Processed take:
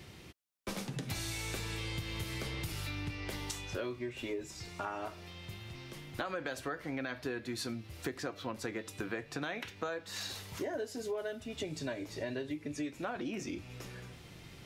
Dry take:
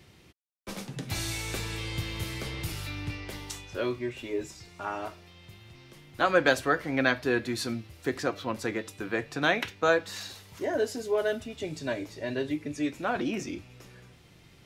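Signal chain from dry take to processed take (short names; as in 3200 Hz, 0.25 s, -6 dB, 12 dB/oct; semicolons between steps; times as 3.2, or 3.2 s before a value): limiter -16.5 dBFS, peak gain reduction 7 dB; compressor 6:1, threshold -40 dBFS, peak gain reduction 16.5 dB; gain +4 dB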